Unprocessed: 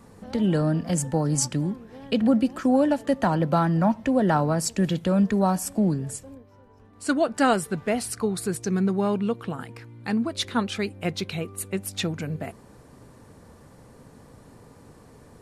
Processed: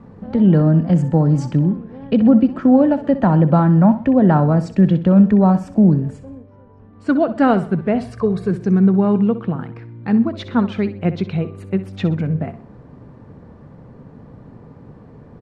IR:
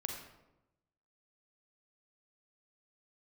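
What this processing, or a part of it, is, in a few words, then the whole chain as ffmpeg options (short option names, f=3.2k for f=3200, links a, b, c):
phone in a pocket: -filter_complex "[0:a]asettb=1/sr,asplit=3[a][b][c];[a]atrim=end=8.004[d];[b]atrim=start=8:end=8.51,asetpts=PTS-STARTPTS,afade=t=in:d=0.004:c=qsin,afade=t=out:st=0.506:d=0.004:c=qsin,aecho=1:1:1.8:0.65,atrim=end_sample=22491[e];[c]atrim=start=8.506[f];[d][e]acrossfade=d=0.004:c1=hsin:c2=qsin[g];[g][f]acrossfade=d=0.004:c1=qsin:c2=hsin,lowpass=3.5k,equalizer=f=160:t=o:w=1.5:g=6,highshelf=f=2.1k:g=-11.5,aecho=1:1:63|126|189|252:0.211|0.0782|0.0289|0.0107,volume=5.5dB"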